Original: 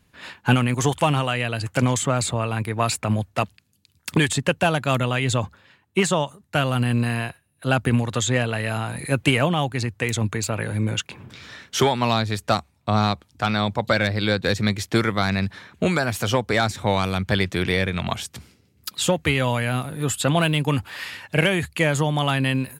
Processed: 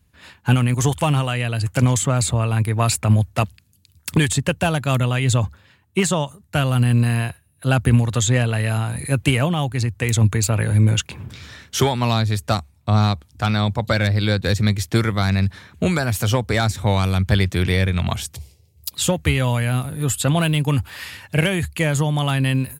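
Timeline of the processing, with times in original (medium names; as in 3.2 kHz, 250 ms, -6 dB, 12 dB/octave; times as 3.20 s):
18.35–18.93 s: static phaser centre 590 Hz, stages 4
whole clip: treble shelf 6.9 kHz +9 dB; level rider; peaking EQ 62 Hz +14 dB 2.1 oct; trim -7 dB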